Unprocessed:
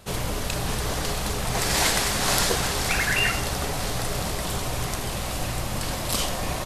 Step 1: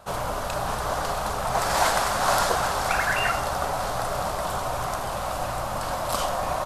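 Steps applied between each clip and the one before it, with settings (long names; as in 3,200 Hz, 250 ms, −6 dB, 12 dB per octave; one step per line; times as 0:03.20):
flat-topped bell 910 Hz +12 dB
level −5.5 dB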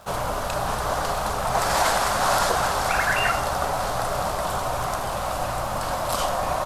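surface crackle 230 per second −41 dBFS
boost into a limiter +11 dB
level −9 dB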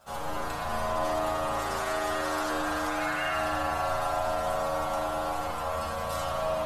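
stiff-string resonator 75 Hz, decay 0.42 s, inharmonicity 0.002
brickwall limiter −26 dBFS, peak gain reduction 7 dB
spring reverb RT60 3.6 s, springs 36 ms, chirp 40 ms, DRR −5 dB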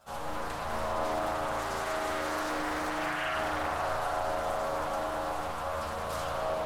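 highs frequency-modulated by the lows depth 0.49 ms
level −2.5 dB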